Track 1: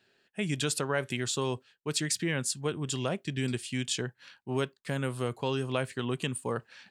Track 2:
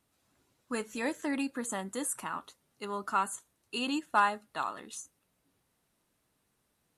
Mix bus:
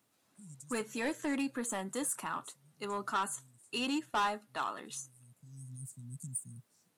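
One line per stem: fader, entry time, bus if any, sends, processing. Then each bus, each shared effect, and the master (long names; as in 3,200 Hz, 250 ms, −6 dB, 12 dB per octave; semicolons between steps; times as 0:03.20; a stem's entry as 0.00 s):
−4.5 dB, 0.00 s, no send, inverse Chebyshev band-stop filter 410–3,200 Hz, stop band 50 dB; high-shelf EQ 5,900 Hz +10 dB; automatic ducking −19 dB, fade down 0.95 s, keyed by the second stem
+0.5 dB, 0.00 s, no send, no processing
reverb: not used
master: high-pass filter 140 Hz 12 dB per octave; soft clipping −26.5 dBFS, distortion −9 dB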